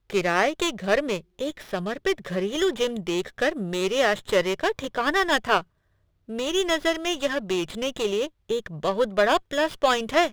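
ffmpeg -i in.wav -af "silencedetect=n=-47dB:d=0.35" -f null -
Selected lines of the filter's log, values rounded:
silence_start: 5.64
silence_end: 6.28 | silence_duration: 0.65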